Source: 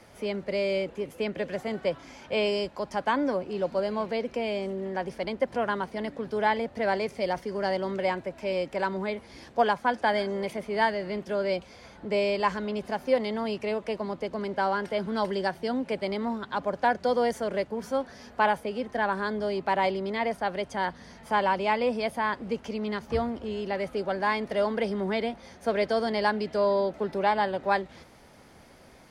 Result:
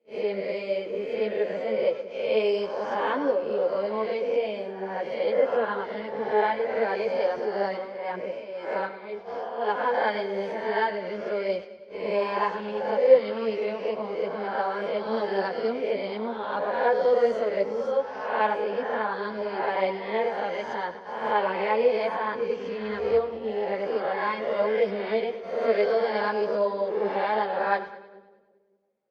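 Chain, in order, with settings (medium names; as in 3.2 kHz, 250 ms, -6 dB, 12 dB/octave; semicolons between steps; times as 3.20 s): reverse spectral sustain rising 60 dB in 1.11 s; high-pass 320 Hz 6 dB/octave; gate -36 dBFS, range -33 dB; peaking EQ 480 Hz +11 dB 0.42 oct; 7.70–9.94 s: tremolo 1.9 Hz, depth 72%; distance through air 160 m; two-band feedback delay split 470 Hz, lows 188 ms, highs 102 ms, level -13.5 dB; three-phase chorus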